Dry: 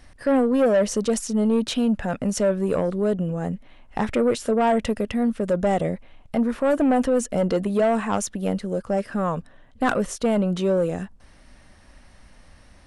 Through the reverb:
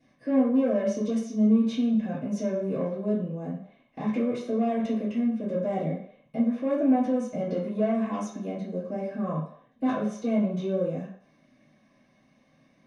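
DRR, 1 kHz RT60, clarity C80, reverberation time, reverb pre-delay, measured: -12.5 dB, 0.65 s, 7.5 dB, 0.65 s, 3 ms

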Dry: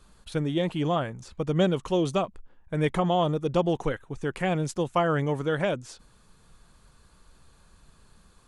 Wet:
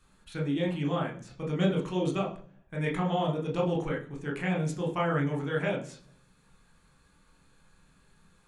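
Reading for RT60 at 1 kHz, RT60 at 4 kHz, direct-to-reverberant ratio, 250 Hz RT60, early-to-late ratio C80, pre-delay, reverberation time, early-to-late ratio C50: 0.40 s, 0.55 s, -1.0 dB, 0.80 s, 15.0 dB, 21 ms, 0.50 s, 10.5 dB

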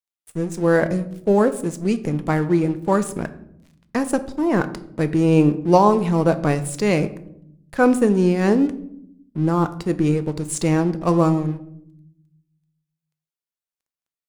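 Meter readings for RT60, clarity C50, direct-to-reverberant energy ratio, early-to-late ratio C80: 0.70 s, 15.0 dB, 10.5 dB, 18.0 dB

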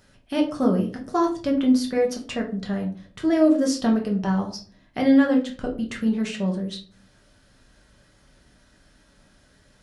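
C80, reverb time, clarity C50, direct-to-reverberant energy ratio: 15.0 dB, 0.40 s, 10.0 dB, 0.0 dB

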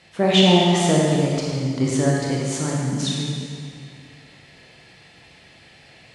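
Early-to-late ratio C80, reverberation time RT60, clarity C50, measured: 0.0 dB, 2.3 s, -1.5 dB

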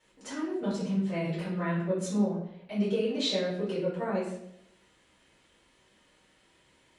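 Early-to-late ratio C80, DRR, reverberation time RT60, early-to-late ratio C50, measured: 6.5 dB, -10.5 dB, 0.75 s, 3.0 dB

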